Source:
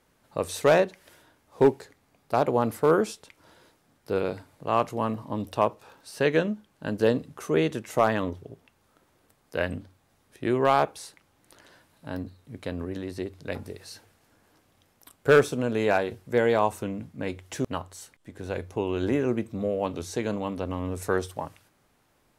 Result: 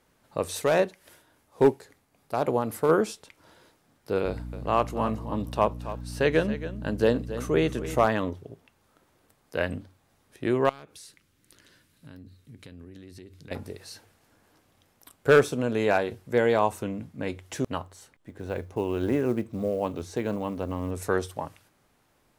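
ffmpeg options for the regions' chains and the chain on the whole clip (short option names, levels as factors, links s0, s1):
-filter_complex "[0:a]asettb=1/sr,asplit=3[s0][s1][s2];[s0]atrim=end=0.564[s3];[s1]atrim=start=0.56:end=2.89,asetpts=PTS-STARTPTS,afade=t=in:d=0.004:c=qsin,afade=t=out:st=2.326:d=0.004:c=qsin,equalizer=f=11000:w=0.95:g=4.5,tremolo=f=3.6:d=0.41[s4];[s2]atrim=start=2.886[s5];[s3][s4]acrossfade=d=0.004:c1=hsin:c2=qsin[s6];[s6][s5]acrossfade=d=0.004:c1=qsin:c2=hsin,asettb=1/sr,asplit=3[s7][s8][s9];[s7]atrim=end=4.254[s10];[s8]atrim=start=4.25:end=8.06,asetpts=PTS-STARTPTS,afade=t=in:d=0.004:c=qsin,afade=t=out:st=3.806:d=0.004:c=qsin,aeval=exprs='val(0)+0.0178*(sin(2*PI*60*n/s)+sin(2*PI*2*60*n/s)/2+sin(2*PI*3*60*n/s)/3+sin(2*PI*4*60*n/s)/4+sin(2*PI*5*60*n/s)/5)':c=same,aecho=1:1:276:0.224,atrim=end_sample=168021[s11];[s9]atrim=start=8.056[s12];[s10][s11]acrossfade=d=0.004:c1=hsin:c2=qsin[s13];[s13][s12]acrossfade=d=0.004:c1=qsin:c2=hsin,asettb=1/sr,asplit=3[s14][s15][s16];[s14]atrim=end=10.694[s17];[s15]atrim=start=10.69:end=13.51,asetpts=PTS-STARTPTS,afade=t=in:d=0.004:c=qsin,afade=t=out:st=2.816:d=0.004:c=qsin,equalizer=f=780:w=1.1:g=-14.5,acompressor=threshold=0.00708:ratio=4:attack=3.2:release=140:knee=1:detection=peak[s18];[s16]atrim=start=13.506[s19];[s17][s18]acrossfade=d=0.004:c1=hsin:c2=qsin[s20];[s20][s19]acrossfade=d=0.004:c1=qsin:c2=hsin,asettb=1/sr,asplit=3[s21][s22][s23];[s21]atrim=end=17.834[s24];[s22]atrim=start=17.83:end=20.91,asetpts=PTS-STARTPTS,afade=t=in:d=0.004:c=qsin,afade=t=out:st=3.076:d=0.004:c=qsin,highshelf=f=3000:g=-8,acrusher=bits=8:mode=log:mix=0:aa=0.000001[s25];[s23]atrim=start=20.906[s26];[s24][s25]acrossfade=d=0.004:c1=hsin:c2=qsin[s27];[s27][s26]acrossfade=d=0.004:c1=qsin:c2=hsin"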